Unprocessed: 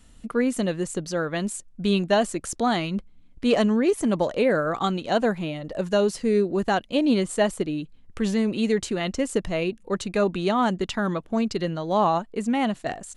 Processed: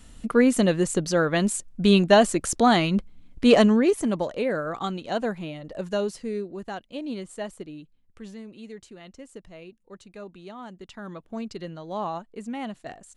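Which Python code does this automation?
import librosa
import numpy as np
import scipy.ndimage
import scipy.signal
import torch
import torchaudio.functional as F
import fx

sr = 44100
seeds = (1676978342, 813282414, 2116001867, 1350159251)

y = fx.gain(x, sr, db=fx.line((3.57, 4.5), (4.31, -5.0), (5.99, -5.0), (6.57, -12.0), (7.8, -12.0), (8.48, -18.5), (10.68, -18.5), (11.3, -9.5)))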